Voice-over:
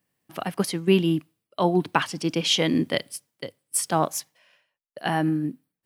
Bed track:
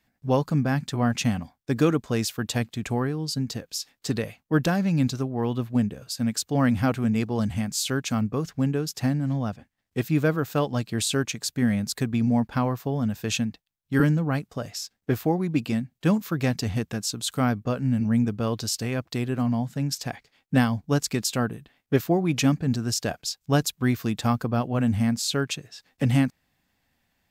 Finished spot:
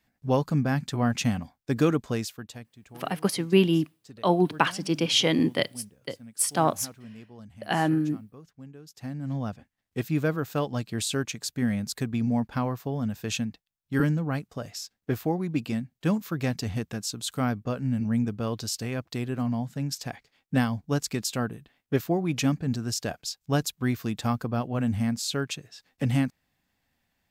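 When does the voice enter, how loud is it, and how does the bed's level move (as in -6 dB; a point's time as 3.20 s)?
2.65 s, -0.5 dB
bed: 2.09 s -1.5 dB
2.72 s -21 dB
8.78 s -21 dB
9.36 s -3.5 dB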